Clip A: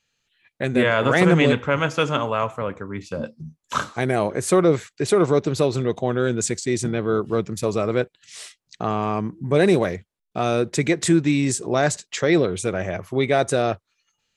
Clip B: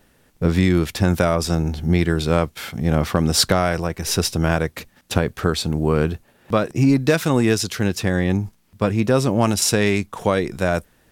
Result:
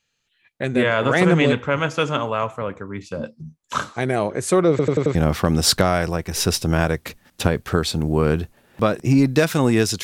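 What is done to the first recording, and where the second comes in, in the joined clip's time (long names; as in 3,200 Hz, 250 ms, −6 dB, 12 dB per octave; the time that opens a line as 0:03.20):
clip A
0:04.70: stutter in place 0.09 s, 5 plays
0:05.15: continue with clip B from 0:02.86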